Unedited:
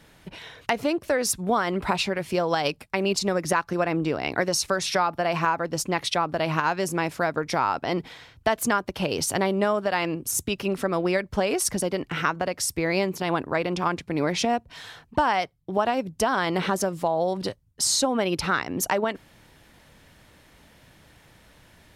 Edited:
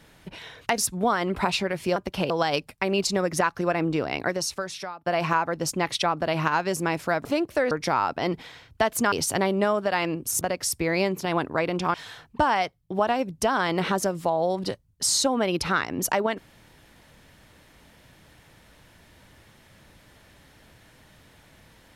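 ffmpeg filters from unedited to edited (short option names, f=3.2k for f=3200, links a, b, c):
-filter_complex "[0:a]asplit=10[a][b][c][d][e][f][g][h][i][j];[a]atrim=end=0.782[k];[b]atrim=start=1.238:end=2.422[l];[c]atrim=start=8.778:end=9.122[m];[d]atrim=start=2.418:end=5.18,asetpts=PTS-STARTPTS,afade=t=out:st=1.752:d=1.01:silence=0.0668344[n];[e]atrim=start=5.18:end=7.372,asetpts=PTS-STARTPTS,afade=t=in:d=0.004:c=hsin:silence=0.0668344[o];[f]atrim=start=0.778:end=1.242[p];[g]atrim=start=7.368:end=8.782[q];[h]atrim=start=9.118:end=10.412[r];[i]atrim=start=12.378:end=13.912[s];[j]atrim=start=14.718[t];[k][l]acrossfade=d=0.004:c1=hsin:c2=hsin[u];[u][m]acrossfade=d=0.004:c1=hsin:c2=hsin[v];[n][o]concat=n=2:v=0:a=1[w];[v][w]acrossfade=d=0.004:c1=hsin:c2=hsin[x];[x][p]acrossfade=d=0.004:c1=hsin:c2=hsin[y];[y][q]acrossfade=d=0.004:c1=hsin:c2=hsin[z];[z][r]acrossfade=d=0.004:c1=hsin:c2=hsin[aa];[aa][s]acrossfade=d=0.004:c1=hsin:c2=hsin[ab];[ab][t]acrossfade=d=0.004:c1=hsin:c2=hsin"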